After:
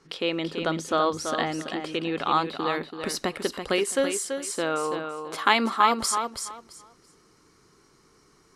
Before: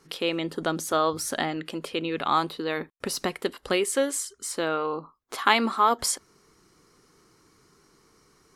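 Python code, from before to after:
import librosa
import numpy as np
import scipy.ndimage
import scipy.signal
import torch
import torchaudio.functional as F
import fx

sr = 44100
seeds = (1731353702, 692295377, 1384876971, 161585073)

y = fx.lowpass(x, sr, hz=fx.steps((0.0, 6300.0), (2.55, 11000.0)), slope=12)
y = fx.echo_feedback(y, sr, ms=333, feedback_pct=21, wet_db=-7.0)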